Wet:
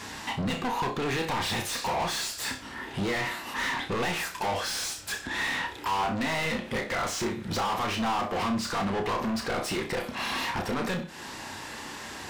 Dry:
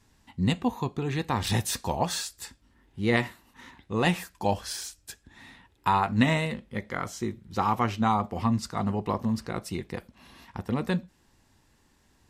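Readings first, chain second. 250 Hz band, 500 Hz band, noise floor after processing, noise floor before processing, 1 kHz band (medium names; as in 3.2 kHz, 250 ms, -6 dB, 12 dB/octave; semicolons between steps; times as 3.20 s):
-3.5 dB, +0.5 dB, -41 dBFS, -65 dBFS, 0.0 dB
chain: compression 6:1, threshold -38 dBFS, peak gain reduction 19.5 dB; overdrive pedal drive 37 dB, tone 3.7 kHz, clips at -22 dBFS; flutter echo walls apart 5.3 m, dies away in 0.26 s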